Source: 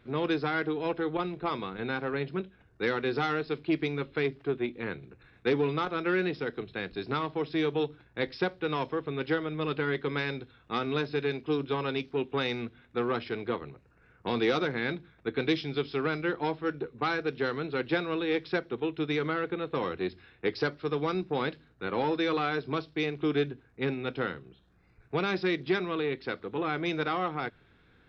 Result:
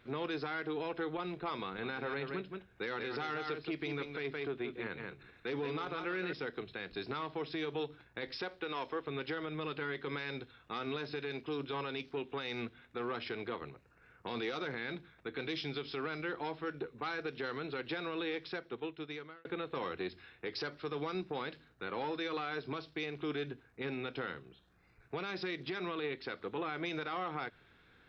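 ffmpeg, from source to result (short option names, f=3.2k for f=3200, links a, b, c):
-filter_complex "[0:a]asettb=1/sr,asplit=3[a][b][c];[a]atrim=end=1.664[d];[b]atrim=start=1.66:end=6.33,asetpts=PTS-STARTPTS,afade=t=in:d=0.004:c=qsin,afade=t=out:st=4.666:d=0.004:c=qsin,aecho=1:1:171:0.376,atrim=end_sample=205947[e];[c]atrim=start=6.326[f];[d][e]acrossfade=d=0.004:c1=hsin:c2=qsin[g];[g][f]acrossfade=d=0.004:c1=qsin:c2=hsin,asettb=1/sr,asplit=3[h][i][j];[h]atrim=end=8.424[k];[i]atrim=start=8.42:end=9.08,asetpts=PTS-STARTPTS,afade=t=in:d=0.004:c=qsin,afade=t=out:st=0.656:d=0.004:c=qsin,equalizer=f=140:w=1.3:g=-8.5[l];[j]atrim=start=9.076[m];[k][l]acrossfade=d=0.004:c1=hsin:c2=qsin[n];[n][m]acrossfade=d=0.004:c1=qsin:c2=hsin,asplit=2[o][p];[o]atrim=end=19.45,asetpts=PTS-STARTPTS,afade=t=out:st=18.2:d=1.25[q];[p]atrim=start=19.45,asetpts=PTS-STARTPTS,afade=t=in:d=0.004:c=hsin[r];[q][r]concat=n=2:v=0:a=1,lowshelf=f=490:g=-7,alimiter=level_in=6dB:limit=-24dB:level=0:latency=1:release=78,volume=-6dB,volume=1dB"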